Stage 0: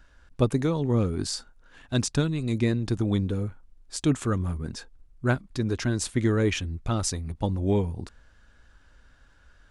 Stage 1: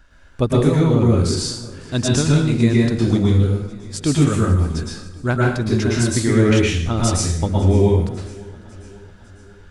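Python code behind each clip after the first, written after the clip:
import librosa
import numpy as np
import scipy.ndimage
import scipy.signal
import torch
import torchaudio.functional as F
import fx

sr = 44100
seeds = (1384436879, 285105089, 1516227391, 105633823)

y = fx.echo_feedback(x, sr, ms=550, feedback_pct=55, wet_db=-21)
y = fx.rev_plate(y, sr, seeds[0], rt60_s=0.65, hf_ratio=0.95, predelay_ms=100, drr_db=-4.0)
y = F.gain(torch.from_numpy(y), 3.5).numpy()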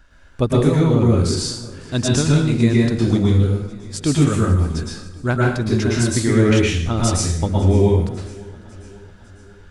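y = x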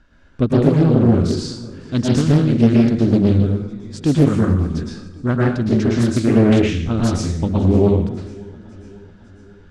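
y = scipy.signal.sosfilt(scipy.signal.butter(2, 6100.0, 'lowpass', fs=sr, output='sos'), x)
y = fx.peak_eq(y, sr, hz=230.0, db=8.5, octaves=1.8)
y = fx.doppler_dist(y, sr, depth_ms=0.57)
y = F.gain(torch.from_numpy(y), -4.0).numpy()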